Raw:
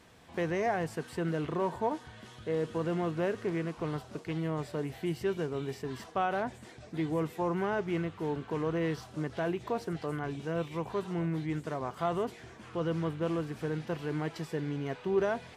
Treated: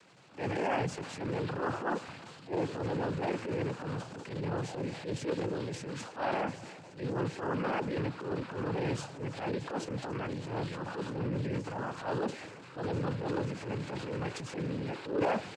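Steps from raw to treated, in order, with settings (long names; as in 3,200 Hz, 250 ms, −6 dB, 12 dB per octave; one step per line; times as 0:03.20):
cochlear-implant simulation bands 8
transient designer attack −11 dB, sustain +6 dB
far-end echo of a speakerphone 350 ms, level −21 dB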